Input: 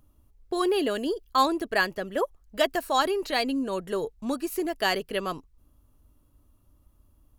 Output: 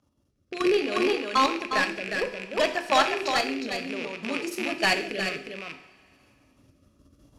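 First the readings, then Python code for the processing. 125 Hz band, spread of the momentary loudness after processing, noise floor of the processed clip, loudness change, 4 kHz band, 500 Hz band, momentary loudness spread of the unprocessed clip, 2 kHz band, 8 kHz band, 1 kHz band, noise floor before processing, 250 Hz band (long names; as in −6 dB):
+0.5 dB, 11 LU, −70 dBFS, +1.5 dB, +2.5 dB, 0.0 dB, 7 LU, +4.0 dB, +2.0 dB, +1.0 dB, −63 dBFS, −1.0 dB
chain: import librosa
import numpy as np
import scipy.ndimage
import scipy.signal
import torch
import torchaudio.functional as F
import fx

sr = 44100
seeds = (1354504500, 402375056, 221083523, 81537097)

p1 = fx.rattle_buzz(x, sr, strikes_db=-41.0, level_db=-15.0)
p2 = fx.recorder_agc(p1, sr, target_db=-17.0, rise_db_per_s=6.5, max_gain_db=30)
p3 = fx.hum_notches(p2, sr, base_hz=50, count=8)
p4 = fx.level_steps(p3, sr, step_db=12)
p5 = fx.dynamic_eq(p4, sr, hz=1500.0, q=1.2, threshold_db=-39.0, ratio=4.0, max_db=5)
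p6 = fx.bandpass_edges(p5, sr, low_hz=130.0, high_hz=7100.0)
p7 = fx.peak_eq(p6, sr, hz=5400.0, db=7.0, octaves=0.5)
p8 = 10.0 ** (-20.5 / 20.0) * np.tanh(p7 / 10.0 ** (-20.5 / 20.0))
p9 = p8 + fx.echo_single(p8, sr, ms=358, db=-4.0, dry=0)
p10 = fx.rev_double_slope(p9, sr, seeds[0], early_s=0.66, late_s=2.5, knee_db=-18, drr_db=6.5)
p11 = fx.rotary(p10, sr, hz=0.6)
y = F.gain(torch.from_numpy(p11), 6.0).numpy()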